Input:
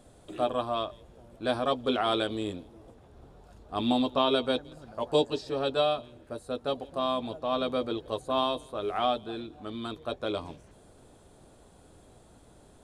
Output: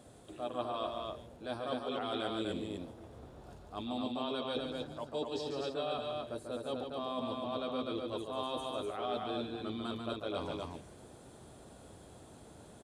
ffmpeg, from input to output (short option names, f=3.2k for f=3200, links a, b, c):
-af "highpass=66,areverse,acompressor=threshold=-36dB:ratio=6,areverse,aecho=1:1:142.9|247.8:0.501|0.708"